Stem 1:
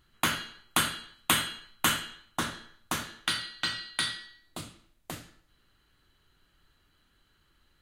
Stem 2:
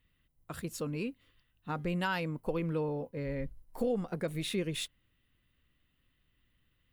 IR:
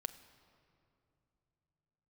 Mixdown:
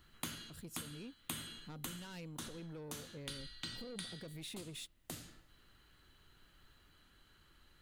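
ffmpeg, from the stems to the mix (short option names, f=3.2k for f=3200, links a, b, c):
-filter_complex "[0:a]volume=1.5dB[a];[1:a]asoftclip=type=tanh:threshold=-32dB,volume=-5dB,asplit=2[b][c];[c]apad=whole_len=344453[d];[a][d]sidechaincompress=threshold=-49dB:ratio=8:attack=9:release=595[e];[e][b]amix=inputs=2:normalize=0,acrossover=split=410|3400[f][g][h];[f]acompressor=threshold=-48dB:ratio=4[i];[g]acompressor=threshold=-56dB:ratio=4[j];[h]acompressor=threshold=-46dB:ratio=4[k];[i][j][k]amix=inputs=3:normalize=0"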